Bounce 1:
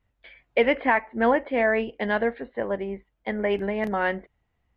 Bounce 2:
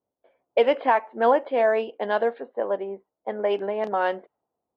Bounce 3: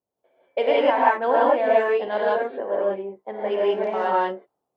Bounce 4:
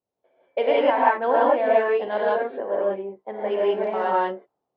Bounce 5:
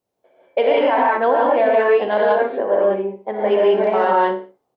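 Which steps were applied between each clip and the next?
HPF 460 Hz 12 dB/oct; low-pass opened by the level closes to 580 Hz, open at -20.5 dBFS; bell 2000 Hz -14.5 dB 0.75 oct; gain +5 dB
non-linear reverb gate 0.21 s rising, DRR -6 dB; gain -4.5 dB
air absorption 110 m
limiter -16 dBFS, peak gain reduction 10.5 dB; on a send: feedback echo 62 ms, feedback 33%, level -12 dB; on the sum: gain +8 dB

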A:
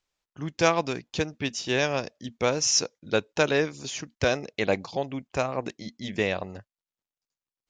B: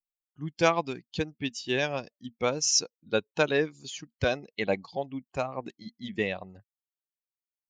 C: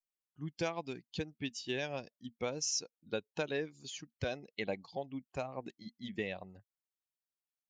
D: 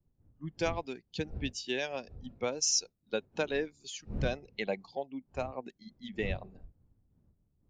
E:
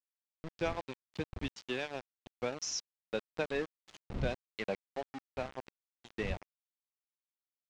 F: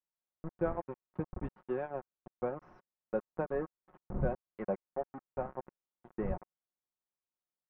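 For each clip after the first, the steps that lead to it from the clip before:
per-bin expansion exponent 1.5
dynamic EQ 1200 Hz, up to -5 dB, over -46 dBFS, Q 2.5; compressor 3:1, threshold -28 dBFS, peak gain reduction 8.5 dB; gain -5.5 dB
wind noise 160 Hz -49 dBFS; spectral noise reduction 9 dB; three-band expander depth 40%; gain +3 dB
sample gate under -35.5 dBFS; air absorption 120 m; gain -2 dB
LPF 1300 Hz 24 dB/oct; comb 5.5 ms, depth 42%; gain +1.5 dB

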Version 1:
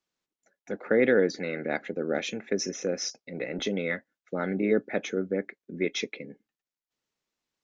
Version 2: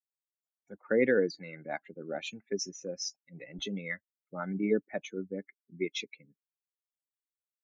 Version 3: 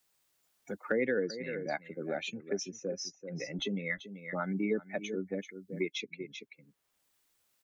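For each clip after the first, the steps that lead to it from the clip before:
per-bin expansion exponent 2; gain -1 dB
echo 0.385 s -15 dB; three-band squash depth 70%

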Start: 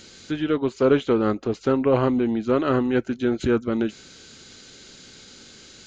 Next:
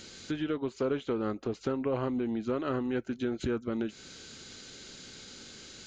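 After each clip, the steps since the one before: compressor 2.5:1, threshold -30 dBFS, peak gain reduction 12 dB; gain -2 dB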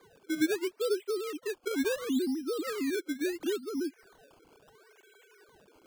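sine-wave speech; decimation with a swept rate 16×, swing 100% 0.73 Hz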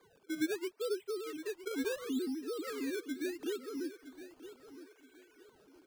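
feedback echo 0.965 s, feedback 31%, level -13.5 dB; gain -6 dB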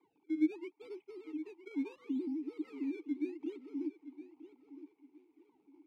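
median filter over 25 samples; vowel filter u; gain +6 dB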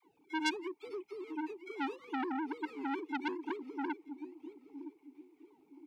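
dispersion lows, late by 46 ms, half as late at 540 Hz; core saturation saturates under 3000 Hz; gain +5.5 dB

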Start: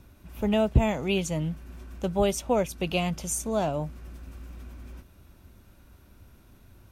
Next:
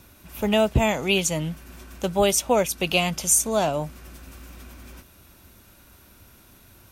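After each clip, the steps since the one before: tilt +2 dB/oct; gain +6 dB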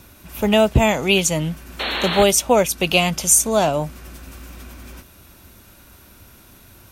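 painted sound noise, 1.79–2.24, 210–4400 Hz -29 dBFS; gain +5 dB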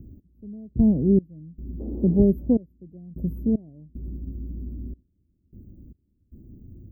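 step gate "x...xx..xxxx" 76 bpm -24 dB; inverse Chebyshev band-stop 1600–9000 Hz, stop band 80 dB; gain +5.5 dB

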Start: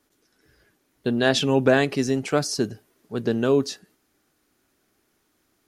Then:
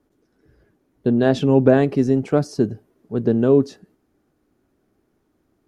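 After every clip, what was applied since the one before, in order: tilt shelf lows +9.5 dB, about 1200 Hz; gain -2.5 dB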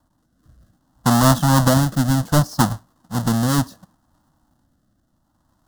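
half-waves squared off; rotary speaker horn 0.65 Hz; fixed phaser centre 980 Hz, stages 4; gain +3.5 dB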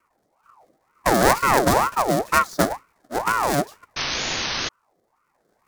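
painted sound noise, 3.96–4.69, 260–5800 Hz -23 dBFS; ring modulator with a swept carrier 840 Hz, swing 50%, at 2.1 Hz

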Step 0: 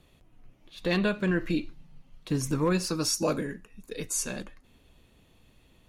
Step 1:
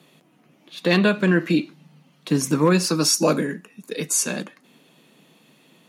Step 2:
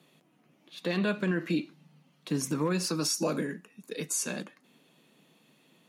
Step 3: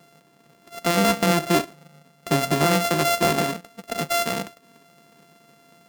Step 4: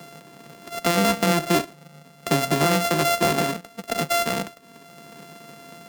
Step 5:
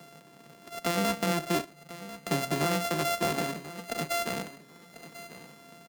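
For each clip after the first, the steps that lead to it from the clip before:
Chebyshev high-pass 150 Hz, order 5; gain +9 dB
limiter -11.5 dBFS, peak gain reduction 7 dB; gain -8 dB
sample sorter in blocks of 64 samples; gain +9 dB
three-band squash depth 40%
feedback echo 1.043 s, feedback 23%, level -15 dB; gain -8 dB

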